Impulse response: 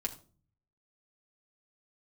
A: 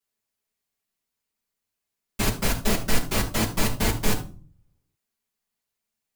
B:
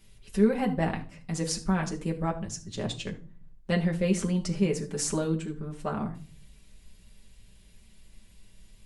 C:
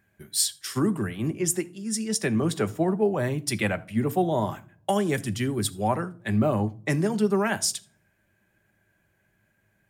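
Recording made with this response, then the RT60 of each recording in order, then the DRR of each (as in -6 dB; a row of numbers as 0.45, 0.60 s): B; 0.40, 0.40, 0.45 s; -9.5, -0.5, 9.0 dB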